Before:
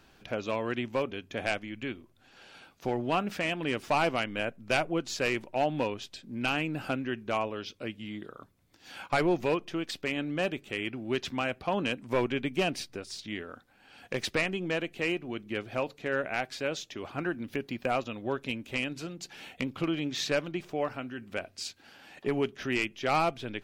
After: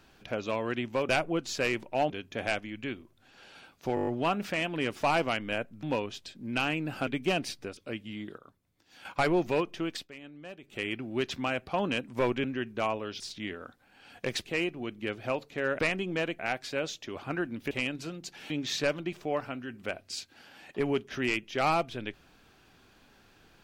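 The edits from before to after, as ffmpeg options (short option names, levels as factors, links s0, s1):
-filter_complex "[0:a]asplit=23[s0][s1][s2][s3][s4][s5][s6][s7][s8][s9][s10][s11][s12][s13][s14][s15][s16][s17][s18][s19][s20][s21][s22];[s0]atrim=end=1.092[s23];[s1]atrim=start=4.698:end=5.712[s24];[s2]atrim=start=1.088:end=2.962[s25];[s3]atrim=start=2.938:end=2.962[s26];[s4]atrim=start=2.938:end=2.962[s27];[s5]atrim=start=2.938:end=2.962[s28];[s6]atrim=start=2.938:end=2.962[s29];[s7]atrim=start=2.938:end=2.962[s30];[s8]atrim=start=2.938:end=4.702[s31];[s9]atrim=start=5.708:end=6.952[s32];[s10]atrim=start=12.378:end=13.082[s33];[s11]atrim=start=7.708:end=8.322[s34];[s12]atrim=start=8.318:end=8.992,asetpts=PTS-STARTPTS,volume=0.447[s35];[s13]atrim=start=8.988:end=10.03,asetpts=PTS-STARTPTS,afade=t=out:st=0.902:d=0.14:silence=0.177828[s36];[s14]atrim=start=10.03:end=10.57,asetpts=PTS-STARTPTS,volume=0.178[s37];[s15]atrim=start=10.57:end=12.382,asetpts=PTS-STARTPTS,afade=t=in:d=0.14:silence=0.177828[s38];[s16]atrim=start=6.948:end=7.712[s39];[s17]atrim=start=13.078:end=14.332[s40];[s18]atrim=start=14.928:end=16.272[s41];[s19]atrim=start=14.328:end=14.932[s42];[s20]atrim=start=16.268:end=17.592[s43];[s21]atrim=start=18.678:end=19.472[s44];[s22]atrim=start=19.978[s45];[s23][s24]acrossfade=d=0.004:c1=hsin:c2=hsin[s46];[s46][s25]acrossfade=d=0.004:c1=hsin:c2=hsin[s47];[s47][s26]acrossfade=d=0.004:c1=hsin:c2=hsin[s48];[s48][s27]acrossfade=d=0.004:c1=hsin:c2=hsin[s49];[s49][s28]acrossfade=d=0.004:c1=hsin:c2=hsin[s50];[s50][s29]acrossfade=d=0.004:c1=hsin:c2=hsin[s51];[s51][s30]acrossfade=d=0.004:c1=hsin:c2=hsin[s52];[s52][s31]acrossfade=d=0.004:c1=hsin:c2=hsin[s53];[s53][s32]acrossfade=d=0.004:c1=hsin:c2=hsin[s54];[s54][s33]acrossfade=d=0.004:c1=hsin:c2=hsin[s55];[s55][s34]acrossfade=d=0.004:c1=hsin:c2=hsin[s56];[s56][s35]acrossfade=d=0.004:c1=hsin:c2=hsin[s57];[s36][s37][s38]concat=n=3:v=0:a=1[s58];[s57][s58]acrossfade=d=0.004:c1=hsin:c2=hsin[s59];[s59][s39]acrossfade=d=0.004:c1=hsin:c2=hsin[s60];[s60][s40]acrossfade=d=0.004:c1=hsin:c2=hsin[s61];[s61][s41]acrossfade=d=0.004:c1=hsin:c2=hsin[s62];[s62][s42]acrossfade=d=0.004:c1=hsin:c2=hsin[s63];[s63][s43]acrossfade=d=0.004:c1=hsin:c2=hsin[s64];[s64][s44]acrossfade=d=0.004:c1=hsin:c2=hsin[s65];[s65][s45]acrossfade=d=0.004:c1=hsin:c2=hsin"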